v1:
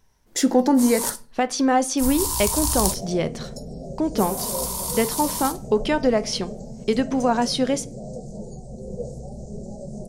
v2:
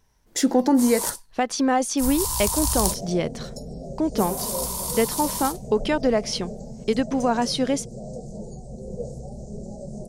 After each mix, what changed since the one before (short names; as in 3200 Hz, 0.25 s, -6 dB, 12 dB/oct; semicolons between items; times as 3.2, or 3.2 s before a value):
reverb: off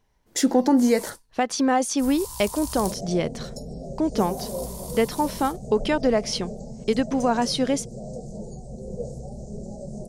first sound -11.0 dB